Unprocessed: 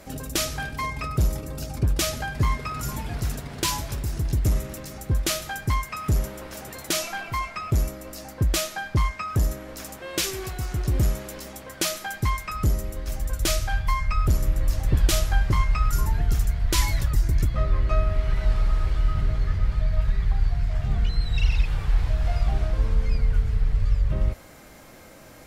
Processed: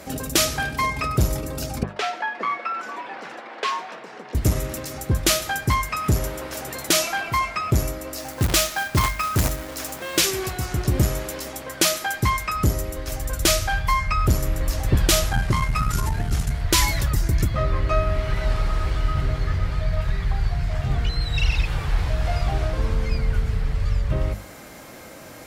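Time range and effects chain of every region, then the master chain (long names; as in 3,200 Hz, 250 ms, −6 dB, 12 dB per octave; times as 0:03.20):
0:01.83–0:04.35: band-pass filter 510–2,200 Hz + frequency shifter +86 Hz
0:08.18–0:10.18: mains-hum notches 60/120/180 Hz + dynamic equaliser 440 Hz, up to −5 dB, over −43 dBFS, Q 1.4 + log-companded quantiser 4 bits
0:15.29–0:16.61: variable-slope delta modulation 64 kbit/s + saturating transformer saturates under 84 Hz
whole clip: high-pass filter 84 Hz 6 dB per octave; mains-hum notches 50/100/150/200 Hz; level +6.5 dB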